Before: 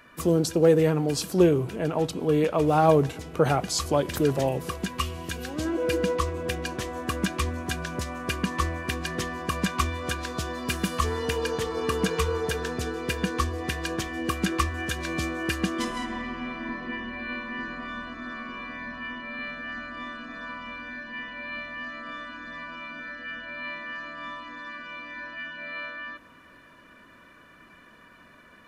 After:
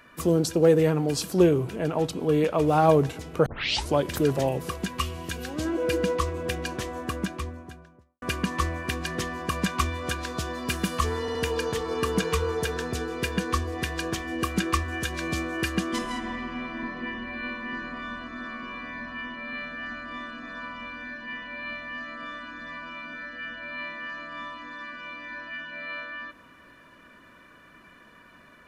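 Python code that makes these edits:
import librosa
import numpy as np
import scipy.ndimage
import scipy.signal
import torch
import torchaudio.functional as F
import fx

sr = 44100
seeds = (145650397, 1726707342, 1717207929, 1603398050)

y = fx.studio_fade_out(x, sr, start_s=6.75, length_s=1.47)
y = fx.edit(y, sr, fx.tape_start(start_s=3.46, length_s=0.44),
    fx.stutter(start_s=11.21, slice_s=0.07, count=3), tone=tone)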